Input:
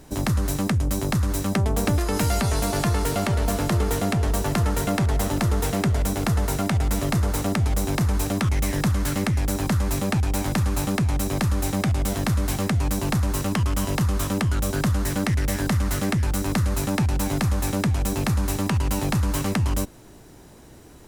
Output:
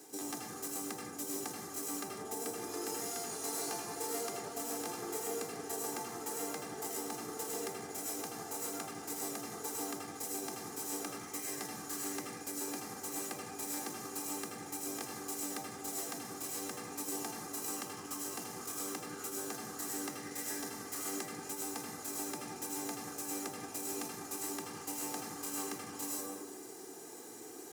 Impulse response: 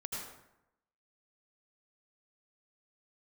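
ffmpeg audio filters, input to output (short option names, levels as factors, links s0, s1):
-filter_complex "[0:a]highshelf=f=4600:t=q:w=1.5:g=6.5,acrossover=split=750|3600[s0][s1][s2];[s2]acrusher=bits=2:mode=log:mix=0:aa=0.000001[s3];[s0][s1][s3]amix=inputs=3:normalize=0,atempo=0.76[s4];[1:a]atrim=start_sample=2205[s5];[s4][s5]afir=irnorm=-1:irlink=0,areverse,acompressor=threshold=0.0282:ratio=8,areverse,highpass=f=210:w=0.5412,highpass=f=210:w=1.3066,aecho=1:1:2.5:0.68,volume=0.668"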